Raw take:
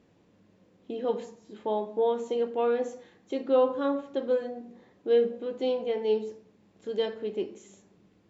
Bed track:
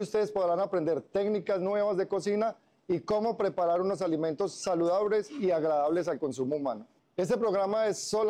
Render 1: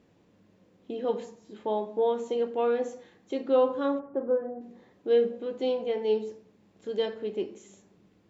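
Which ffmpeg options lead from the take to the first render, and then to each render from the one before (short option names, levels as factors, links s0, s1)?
-filter_complex "[0:a]asplit=3[s0][s1][s2];[s0]afade=t=out:st=3.98:d=0.02[s3];[s1]lowpass=f=1400:w=0.5412,lowpass=f=1400:w=1.3066,afade=t=in:st=3.98:d=0.02,afade=t=out:st=4.6:d=0.02[s4];[s2]afade=t=in:st=4.6:d=0.02[s5];[s3][s4][s5]amix=inputs=3:normalize=0"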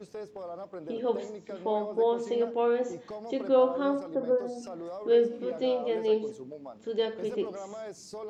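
-filter_complex "[1:a]volume=0.237[s0];[0:a][s0]amix=inputs=2:normalize=0"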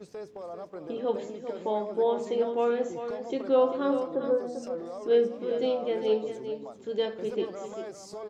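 -af "aecho=1:1:395:0.335"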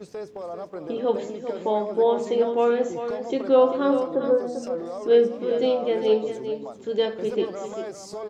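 -af "volume=1.88"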